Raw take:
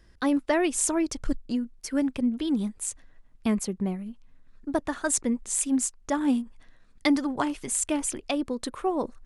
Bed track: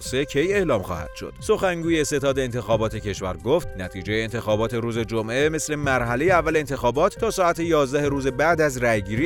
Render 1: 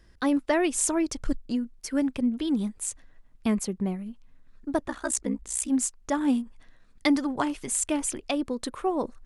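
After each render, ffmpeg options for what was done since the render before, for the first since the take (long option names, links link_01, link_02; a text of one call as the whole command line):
ffmpeg -i in.wav -filter_complex "[0:a]asplit=3[link_01][link_02][link_03];[link_01]afade=type=out:start_time=4.84:duration=0.02[link_04];[link_02]aeval=exprs='val(0)*sin(2*PI*31*n/s)':channel_layout=same,afade=type=in:start_time=4.84:duration=0.02,afade=type=out:start_time=5.68:duration=0.02[link_05];[link_03]afade=type=in:start_time=5.68:duration=0.02[link_06];[link_04][link_05][link_06]amix=inputs=3:normalize=0" out.wav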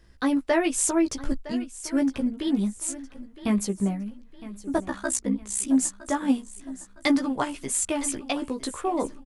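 ffmpeg -i in.wav -filter_complex "[0:a]asplit=2[link_01][link_02];[link_02]adelay=15,volume=-4dB[link_03];[link_01][link_03]amix=inputs=2:normalize=0,aecho=1:1:961|1922|2883|3844:0.15|0.0613|0.0252|0.0103" out.wav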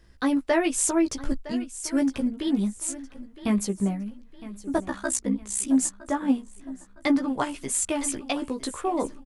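ffmpeg -i in.wav -filter_complex "[0:a]asettb=1/sr,asplit=3[link_01][link_02][link_03];[link_01]atrim=end=1.694[link_04];[link_02]atrim=start=1.69:end=2.28,asetpts=PTS-STARTPTS,afade=type=in:duration=0.004:curve=qsin,afade=type=out:start_time=0.586:duration=0.004:curve=qsin,equalizer=frequency=8600:width=0.55:gain=3.5[link_05];[link_03]atrim=start=2.276[link_06];[link_04][link_05]acrossfade=duration=0.004:curve1=hsin:curve2=qsin[link_07];[link_07][link_06]acrossfade=duration=0.004:curve1=qsin:curve2=hsin,asettb=1/sr,asplit=3[link_08][link_09][link_10];[link_08]atrim=end=5.894[link_11];[link_09]atrim=start=5.89:end=7.28,asetpts=PTS-STARTPTS,afade=type=in:duration=0.004:curve=qsin,afade=type=out:start_time=1.386:duration=0.004:curve=qsin,equalizer=frequency=8500:width_type=o:width=2.7:gain=-8.5[link_12];[link_10]atrim=start=7.276[link_13];[link_11][link_12]acrossfade=duration=0.004:curve1=hsin:curve2=qsin[link_14];[link_14][link_13]acrossfade=duration=0.004:curve1=qsin:curve2=hsin" out.wav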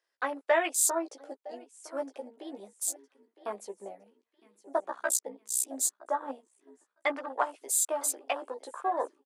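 ffmpeg -i in.wav -af "afwtdn=0.0178,highpass=frequency=510:width=0.5412,highpass=frequency=510:width=1.3066" out.wav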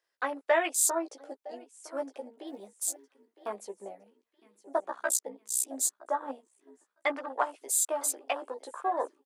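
ffmpeg -i in.wav -filter_complex "[0:a]asettb=1/sr,asplit=3[link_01][link_02][link_03];[link_01]atrim=end=2.474[link_04];[link_02]atrim=start=2.47:end=3.48,asetpts=PTS-STARTPTS,afade=type=in:duration=0.004:curve=qsin,afade=type=out:start_time=1.006:duration=0.004:curve=qsin,acrusher=bits=9:mode=log:mix=0:aa=0.000001[link_05];[link_03]atrim=start=3.476[link_06];[link_04][link_05]acrossfade=duration=0.004:curve1=hsin:curve2=qsin[link_07];[link_07][link_06]acrossfade=duration=0.004:curve1=qsin:curve2=hsin" out.wav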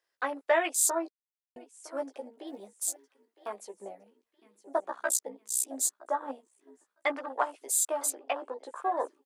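ffmpeg -i in.wav -filter_complex "[0:a]asettb=1/sr,asplit=3[link_01][link_02][link_03];[link_01]atrim=end=2.904[link_04];[link_02]atrim=start=2.9:end=3.74,asetpts=PTS-STARTPTS,afade=type=in:duration=0.004:curve=qsin,afade=type=out:start_time=0.836:duration=0.004:curve=qsin,lowshelf=frequency=320:gain=-9.5[link_05];[link_03]atrim=start=3.736[link_06];[link_04][link_05]acrossfade=duration=0.004:curve1=hsin:curve2=qsin[link_07];[link_07][link_06]acrossfade=duration=0.004:curve1=qsin:curve2=hsin,asettb=1/sr,asplit=3[link_08][link_09][link_10];[link_08]atrim=end=8.104[link_11];[link_09]atrim=start=8.1:end=8.76,asetpts=PTS-STARTPTS,afade=type=in:duration=0.004:curve=qsin,afade=type=out:start_time=0.656:duration=0.004:curve=qsin,aemphasis=mode=reproduction:type=50fm[link_12];[link_10]atrim=start=8.756[link_13];[link_11][link_12]acrossfade=duration=0.004:curve1=hsin:curve2=qsin[link_14];[link_14][link_13]acrossfade=duration=0.004:curve1=qsin:curve2=hsin,asplit=3[link_15][link_16][link_17];[link_15]atrim=end=1.1,asetpts=PTS-STARTPTS,afade=type=out:start_time=1.096:duration=0.004:curve=hsin[link_18];[link_16]atrim=start=1.1:end=1.56,asetpts=PTS-STARTPTS,volume=0[link_19];[link_17]atrim=start=1.56,asetpts=PTS-STARTPTS,afade=type=in:duration=0.004:curve=hsin[link_20];[link_18][link_19][link_20]concat=n=3:v=0:a=1" out.wav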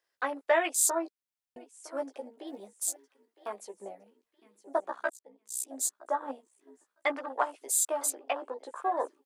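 ffmpeg -i in.wav -filter_complex "[0:a]asplit=2[link_01][link_02];[link_01]atrim=end=5.1,asetpts=PTS-STARTPTS,afade=type=out:start_time=5.096:duration=0.004:curve=hsin[link_03];[link_02]atrim=start=5.1,asetpts=PTS-STARTPTS,afade=type=in:duration=0.96[link_04];[link_03][link_04]concat=n=2:v=0:a=1" out.wav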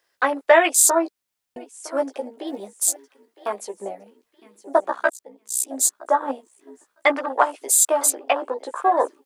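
ffmpeg -i in.wav -af "volume=11.5dB,alimiter=limit=-3dB:level=0:latency=1" out.wav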